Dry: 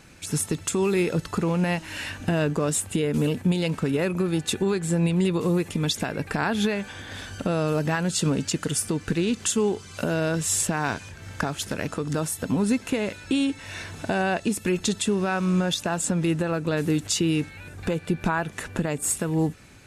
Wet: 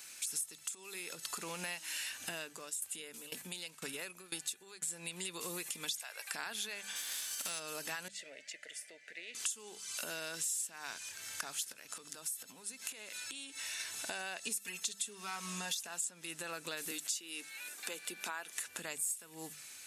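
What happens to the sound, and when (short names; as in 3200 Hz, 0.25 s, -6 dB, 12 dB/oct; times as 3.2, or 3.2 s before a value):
0.64–1.26 compressor, threshold -30 dBFS
2.32–4.88 dB-ramp tremolo decaying 2 Hz, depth 18 dB
5.94–6.34 HPF 570 Hz 24 dB/oct
6.95–7.58 spectral whitening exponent 0.6
8.08–9.35 double band-pass 1100 Hz, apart 1.7 oct
11.72–13.8 compressor 10:1, threshold -34 dBFS
14.43–15.87 comb 4.4 ms, depth 96%
16.91–18.56 HPF 220 Hz 24 dB/oct
whole clip: differentiator; notches 50/100/150/200 Hz; compressor 5:1, threshold -46 dBFS; gain +8 dB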